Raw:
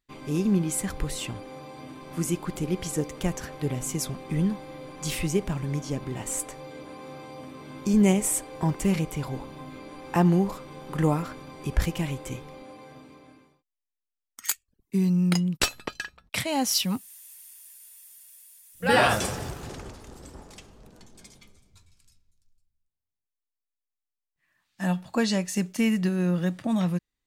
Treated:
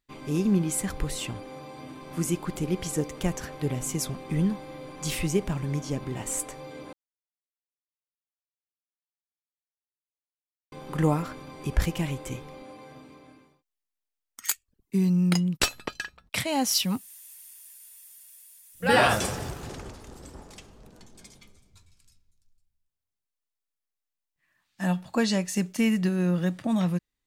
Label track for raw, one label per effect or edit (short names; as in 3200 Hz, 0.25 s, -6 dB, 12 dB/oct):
6.930000	10.720000	mute